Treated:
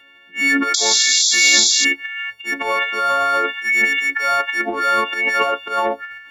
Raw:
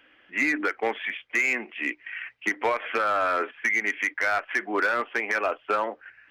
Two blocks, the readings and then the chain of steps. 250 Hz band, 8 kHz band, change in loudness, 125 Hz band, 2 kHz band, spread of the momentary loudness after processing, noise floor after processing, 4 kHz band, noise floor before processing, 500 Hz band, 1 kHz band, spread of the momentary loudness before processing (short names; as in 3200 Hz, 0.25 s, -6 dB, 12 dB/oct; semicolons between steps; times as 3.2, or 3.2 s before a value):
+6.5 dB, +28.0 dB, +10.5 dB, n/a, +8.0 dB, 12 LU, -48 dBFS, +24.0 dB, -60 dBFS, +4.5 dB, +8.0 dB, 7 LU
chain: frequency quantiser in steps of 4 st; painted sound noise, 0.74–1.85, 3300–7500 Hz -19 dBFS; transient shaper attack -10 dB, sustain +11 dB; gain +3 dB